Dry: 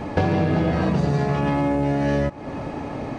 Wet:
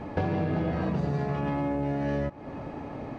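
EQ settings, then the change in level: high shelf 4700 Hz -11 dB; -7.5 dB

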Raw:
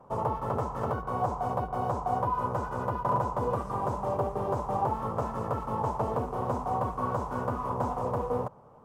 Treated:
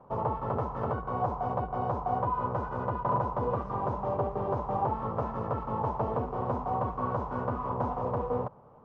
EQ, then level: air absorption 230 m; 0.0 dB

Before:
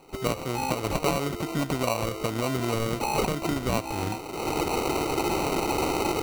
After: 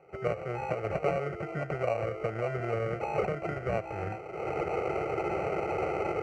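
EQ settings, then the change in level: BPF 100–2200 Hz; fixed phaser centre 990 Hz, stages 6; 0.0 dB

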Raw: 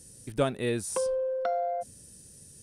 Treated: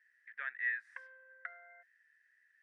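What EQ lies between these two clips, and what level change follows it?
Butterworth band-pass 1800 Hz, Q 5.2; +10.0 dB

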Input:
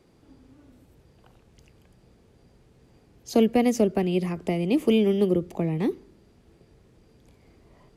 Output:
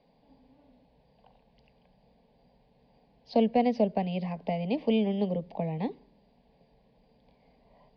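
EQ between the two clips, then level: elliptic low-pass 4700 Hz, stop band 40 dB; bell 940 Hz +9.5 dB 1.4 oct; fixed phaser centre 350 Hz, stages 6; -4.0 dB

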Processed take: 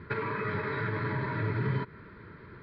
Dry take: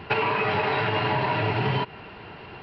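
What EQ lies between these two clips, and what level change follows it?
air absorption 220 m; high shelf 3900 Hz -6 dB; fixed phaser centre 2800 Hz, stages 6; -2.5 dB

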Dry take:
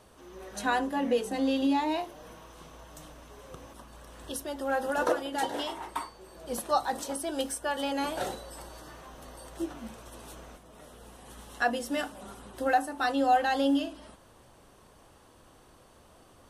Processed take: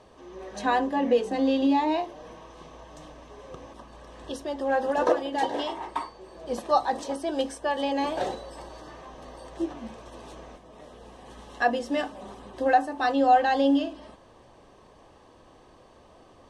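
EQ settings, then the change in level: Butterworth band-stop 1400 Hz, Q 7.3; tone controls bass -6 dB, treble +11 dB; tape spacing loss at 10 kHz 30 dB; +7.0 dB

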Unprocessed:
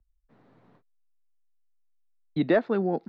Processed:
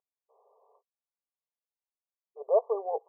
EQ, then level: brick-wall FIR band-pass 400–1200 Hz; 0.0 dB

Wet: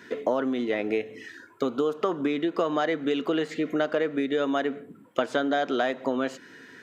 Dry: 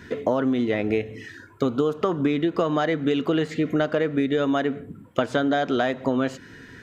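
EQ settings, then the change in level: HPF 270 Hz 12 dB/oct; -2.0 dB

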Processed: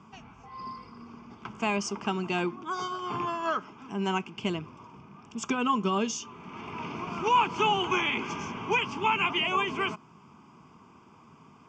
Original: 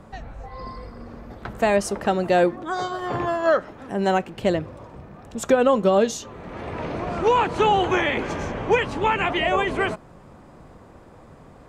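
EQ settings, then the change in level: speaker cabinet 230–6300 Hz, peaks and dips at 310 Hz -6 dB, 740 Hz -10 dB, 1400 Hz -6 dB; fixed phaser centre 2700 Hz, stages 8; +1.5 dB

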